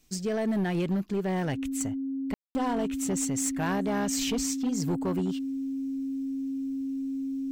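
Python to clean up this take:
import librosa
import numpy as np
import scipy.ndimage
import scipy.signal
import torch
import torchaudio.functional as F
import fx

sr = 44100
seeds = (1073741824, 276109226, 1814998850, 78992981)

y = fx.fix_declip(x, sr, threshold_db=-23.0)
y = fx.notch(y, sr, hz=270.0, q=30.0)
y = fx.fix_ambience(y, sr, seeds[0], print_start_s=0.0, print_end_s=0.5, start_s=2.34, end_s=2.55)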